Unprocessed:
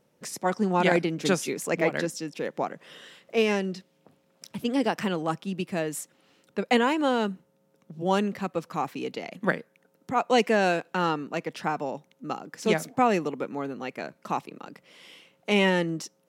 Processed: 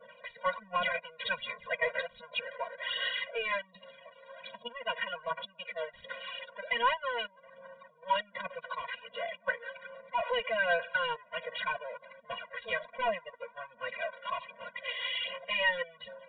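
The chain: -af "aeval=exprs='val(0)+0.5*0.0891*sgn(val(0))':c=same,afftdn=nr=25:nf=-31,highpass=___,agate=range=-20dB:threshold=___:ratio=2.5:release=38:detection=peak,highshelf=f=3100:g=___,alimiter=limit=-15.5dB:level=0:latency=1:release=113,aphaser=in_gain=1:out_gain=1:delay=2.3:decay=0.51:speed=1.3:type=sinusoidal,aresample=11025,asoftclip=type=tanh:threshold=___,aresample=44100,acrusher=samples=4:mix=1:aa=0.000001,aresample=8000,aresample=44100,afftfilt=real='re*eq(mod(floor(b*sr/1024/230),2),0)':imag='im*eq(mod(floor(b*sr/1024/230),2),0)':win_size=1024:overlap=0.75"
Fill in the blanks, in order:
940, -29dB, 2.5, -18.5dB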